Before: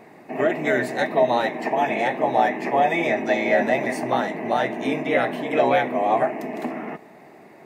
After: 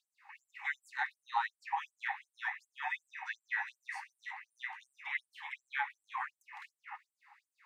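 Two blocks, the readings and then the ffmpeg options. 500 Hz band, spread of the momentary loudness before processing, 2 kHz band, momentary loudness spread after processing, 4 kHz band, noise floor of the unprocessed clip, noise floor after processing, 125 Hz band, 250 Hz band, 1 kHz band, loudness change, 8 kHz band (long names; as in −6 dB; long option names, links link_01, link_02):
below −40 dB, 10 LU, −11.5 dB, 14 LU, −16.0 dB, −47 dBFS, below −85 dBFS, below −40 dB, below −40 dB, −18.0 dB, −18.0 dB, below −15 dB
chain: -filter_complex "[0:a]aemphasis=mode=reproduction:type=riaa,acrossover=split=3000[link_01][link_02];[link_02]acompressor=threshold=-45dB:ratio=4:attack=1:release=60[link_03];[link_01][link_03]amix=inputs=2:normalize=0,afftfilt=real='re*gte(b*sr/1024,740*pow(7600/740,0.5+0.5*sin(2*PI*2.7*pts/sr)))':imag='im*gte(b*sr/1024,740*pow(7600/740,0.5+0.5*sin(2*PI*2.7*pts/sr)))':win_size=1024:overlap=0.75,volume=-5.5dB"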